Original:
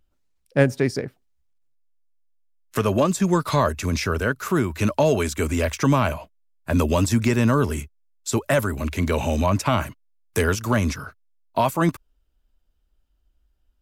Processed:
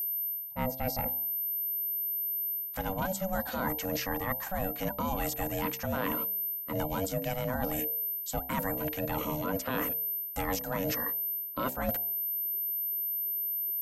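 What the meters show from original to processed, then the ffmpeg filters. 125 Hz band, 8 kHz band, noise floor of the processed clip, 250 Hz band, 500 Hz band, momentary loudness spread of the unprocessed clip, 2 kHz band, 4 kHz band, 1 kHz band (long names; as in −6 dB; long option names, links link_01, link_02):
−15.5 dB, −9.5 dB, −40 dBFS, −13.0 dB, −12.0 dB, 10 LU, −10.5 dB, −9.5 dB, −9.0 dB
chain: -af "aeval=exprs='val(0)*sin(2*PI*380*n/s)':channel_layout=same,aeval=exprs='val(0)+0.0282*sin(2*PI*13000*n/s)':channel_layout=same,areverse,acompressor=threshold=-30dB:ratio=6,areverse,bandreject=frequency=65.47:width_type=h:width=4,bandreject=frequency=130.94:width_type=h:width=4,bandreject=frequency=196.41:width_type=h:width=4,bandreject=frequency=261.88:width_type=h:width=4,bandreject=frequency=327.35:width_type=h:width=4,bandreject=frequency=392.82:width_type=h:width=4,bandreject=frequency=458.29:width_type=h:width=4,bandreject=frequency=523.76:width_type=h:width=4,bandreject=frequency=589.23:width_type=h:width=4,bandreject=frequency=654.7:width_type=h:width=4,bandreject=frequency=720.17:width_type=h:width=4,bandreject=frequency=785.64:width_type=h:width=4,bandreject=frequency=851.11:width_type=h:width=4,bandreject=frequency=916.58:width_type=h:width=4,volume=1.5dB"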